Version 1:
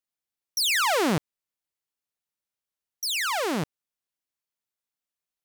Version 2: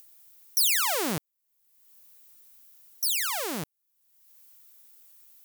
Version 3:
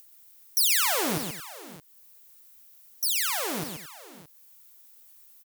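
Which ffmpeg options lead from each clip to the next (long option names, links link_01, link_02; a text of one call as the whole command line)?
ffmpeg -i in.wav -af "aemphasis=mode=production:type=50fm,acompressor=mode=upward:threshold=-27dB:ratio=2.5,volume=-6.5dB" out.wav
ffmpeg -i in.wav -af "aecho=1:1:55|129|221|586|620:0.188|0.473|0.141|0.106|0.126" out.wav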